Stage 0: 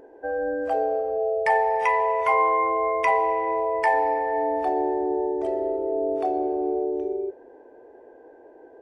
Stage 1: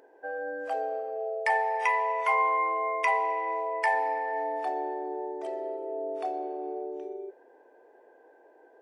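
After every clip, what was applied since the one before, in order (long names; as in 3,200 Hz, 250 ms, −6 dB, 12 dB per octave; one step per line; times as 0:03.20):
high-pass filter 1,300 Hz 6 dB per octave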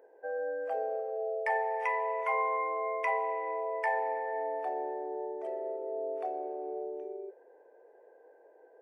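octave-band graphic EQ 125/250/500/2,000/4,000/8,000 Hz −12/−3/+11/+4/−8/−5 dB
level −8.5 dB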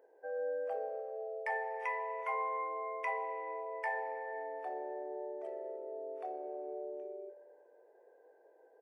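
double-tracking delay 22 ms −14 dB
feedback echo with a band-pass in the loop 63 ms, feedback 77%, band-pass 630 Hz, level −13 dB
level −5.5 dB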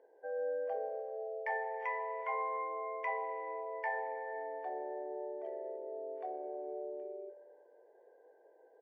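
high-frequency loss of the air 190 metres
notch comb filter 1,300 Hz
level +1 dB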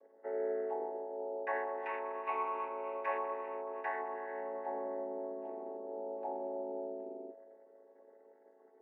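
channel vocoder with a chord as carrier minor triad, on F#3
on a send at −18.5 dB: convolution reverb, pre-delay 7 ms
on the sum: level +2 dB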